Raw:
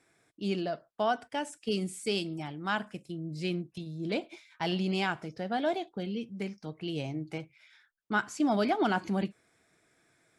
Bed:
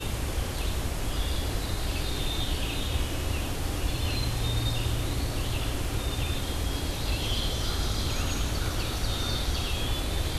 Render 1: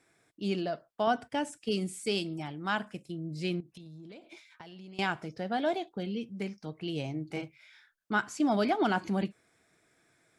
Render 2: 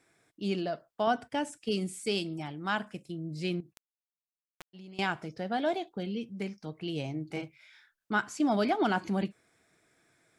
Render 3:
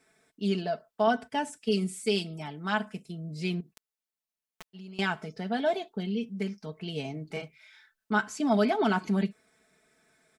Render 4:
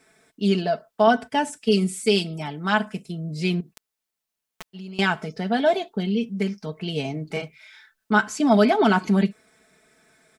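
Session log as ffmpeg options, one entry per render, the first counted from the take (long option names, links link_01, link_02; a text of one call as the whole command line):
ffmpeg -i in.wav -filter_complex "[0:a]asettb=1/sr,asplit=3[link_01][link_02][link_03];[link_01]atrim=end=1.074[link_04];[link_02]atrim=start=1.07:end=1.65,asetpts=PTS-STARTPTS,afade=type=in:duration=0.004:curve=qsin,afade=type=out:start_time=0.576:duration=0.004:curve=qsin,equalizer=frequency=110:width=0.5:gain=10[link_05];[link_03]atrim=start=1.646[link_06];[link_04][link_05]acrossfade=duration=0.004:curve1=hsin:curve2=qsin[link_07];[link_07][link_06]acrossfade=duration=0.004:curve1=qsin:curve2=hsin,asettb=1/sr,asplit=3[link_08][link_09][link_10];[link_08]atrim=end=3.604[link_11];[link_09]atrim=start=3.6:end=4.99,asetpts=PTS-STARTPTS,afade=type=in:duration=0.004:curve=qsin,afade=type=out:start_time=1.386:duration=0.004:curve=qsin,acompressor=threshold=-44dB:ratio=20:attack=3.2:release=140:knee=1:detection=peak[link_12];[link_10]atrim=start=4.986[link_13];[link_11][link_12]acrossfade=duration=0.004:curve1=hsin:curve2=qsin[link_14];[link_14][link_13]acrossfade=duration=0.004:curve1=qsin:curve2=hsin,asettb=1/sr,asplit=3[link_15][link_16][link_17];[link_15]atrim=end=7.274[link_18];[link_16]atrim=start=7.27:end=8.13,asetpts=PTS-STARTPTS,afade=type=in:duration=0.004:curve=qsin,afade=type=out:start_time=0.856:duration=0.004:curve=qsin,asplit=2[link_19][link_20];[link_20]adelay=34,volume=-2dB[link_21];[link_19][link_21]amix=inputs=2:normalize=0,atrim=end_sample=37926[link_22];[link_17]atrim=start=8.126[link_23];[link_18][link_22]acrossfade=duration=0.004:curve1=hsin:curve2=qsin[link_24];[link_24][link_23]acrossfade=duration=0.004:curve1=qsin:curve2=hsin" out.wav
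ffmpeg -i in.wav -filter_complex "[0:a]asplit=3[link_01][link_02][link_03];[link_01]afade=type=out:start_time=3.72:duration=0.02[link_04];[link_02]acrusher=bits=3:dc=4:mix=0:aa=0.000001,afade=type=in:start_time=3.72:duration=0.02,afade=type=out:start_time=4.73:duration=0.02[link_05];[link_03]afade=type=in:start_time=4.73:duration=0.02[link_06];[link_04][link_05][link_06]amix=inputs=3:normalize=0" out.wav
ffmpeg -i in.wav -af "aecho=1:1:4.6:0.73" out.wav
ffmpeg -i in.wav -af "volume=7.5dB" out.wav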